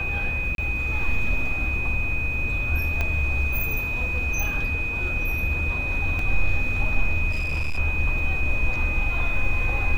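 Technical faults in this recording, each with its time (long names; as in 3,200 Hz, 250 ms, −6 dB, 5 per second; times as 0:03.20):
whistle 2,500 Hz −26 dBFS
0:00.55–0:00.58: drop-out 32 ms
0:03.01: click −12 dBFS
0:06.19: drop-out 2.4 ms
0:07.30–0:07.79: clipping −21 dBFS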